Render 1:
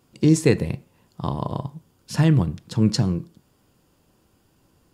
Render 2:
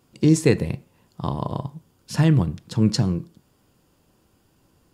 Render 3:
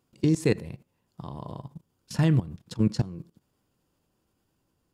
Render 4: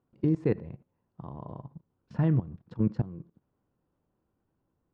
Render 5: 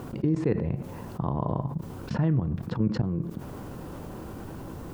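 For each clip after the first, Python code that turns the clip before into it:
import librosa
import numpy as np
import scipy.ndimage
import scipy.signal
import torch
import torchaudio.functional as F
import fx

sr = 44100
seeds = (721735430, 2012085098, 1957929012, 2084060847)

y1 = x
y2 = fx.level_steps(y1, sr, step_db=18)
y2 = F.gain(torch.from_numpy(y2), -2.0).numpy()
y3 = scipy.signal.sosfilt(scipy.signal.butter(2, 1400.0, 'lowpass', fs=sr, output='sos'), y2)
y3 = F.gain(torch.from_numpy(y3), -3.0).numpy()
y4 = fx.env_flatten(y3, sr, amount_pct=70)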